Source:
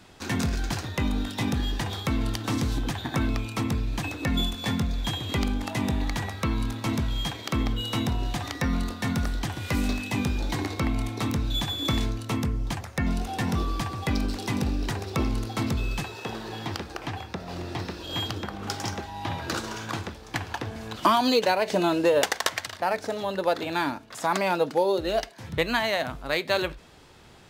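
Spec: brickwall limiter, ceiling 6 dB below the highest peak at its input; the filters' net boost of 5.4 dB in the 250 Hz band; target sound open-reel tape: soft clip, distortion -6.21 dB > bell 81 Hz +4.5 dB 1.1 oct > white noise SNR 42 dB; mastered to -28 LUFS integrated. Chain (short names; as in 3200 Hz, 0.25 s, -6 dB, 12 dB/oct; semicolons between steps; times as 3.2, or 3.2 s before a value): bell 250 Hz +6 dB; limiter -13.5 dBFS; soft clip -30 dBFS; bell 81 Hz +4.5 dB 1.1 oct; white noise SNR 42 dB; gain +5.5 dB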